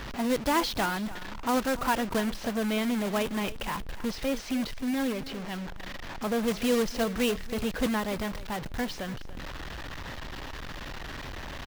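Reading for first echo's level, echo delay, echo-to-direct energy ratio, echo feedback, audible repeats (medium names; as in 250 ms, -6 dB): -16.5 dB, 292 ms, -16.5 dB, 16%, 2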